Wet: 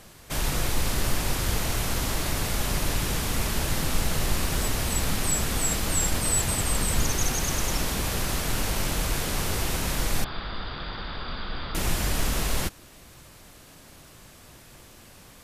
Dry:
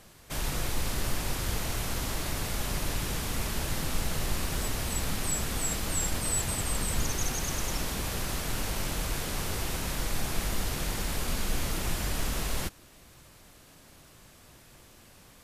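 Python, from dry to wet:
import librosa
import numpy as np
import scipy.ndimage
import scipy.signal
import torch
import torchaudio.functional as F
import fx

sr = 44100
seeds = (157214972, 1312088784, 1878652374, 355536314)

y = fx.cheby_ripple(x, sr, hz=4900.0, ripple_db=9, at=(10.24, 11.75))
y = F.gain(torch.from_numpy(y), 5.0).numpy()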